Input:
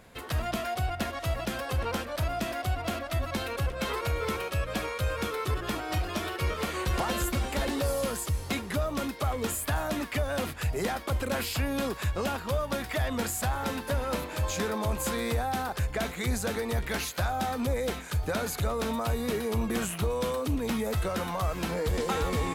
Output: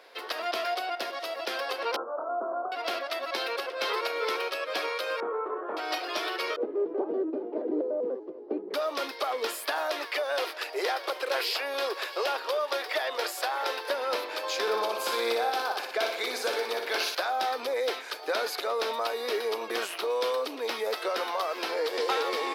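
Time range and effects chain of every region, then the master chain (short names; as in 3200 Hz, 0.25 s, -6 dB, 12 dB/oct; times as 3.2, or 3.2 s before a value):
0.97–1.46 bell 1700 Hz -4 dB 3 oct + upward compressor, threshold -33 dBFS
1.96–2.72 steep low-pass 1400 Hz 96 dB/oct + doubler 26 ms -8 dB
5.2–5.77 LPF 1200 Hz 24 dB/oct + doubler 28 ms -4.5 dB
6.56–8.74 synth low-pass 360 Hz, resonance Q 1.9 + low shelf 280 Hz +9 dB + shaped vibrato square 5.2 Hz, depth 160 cents
9.78–13.9 steep high-pass 320 Hz + echo 0.659 s -16.5 dB
14.61–17.15 notch 1900 Hz, Q 9 + flutter echo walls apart 10.3 m, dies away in 0.66 s
whole clip: steep high-pass 360 Hz 36 dB/oct; resonant high shelf 6000 Hz -6 dB, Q 3; gain +2.5 dB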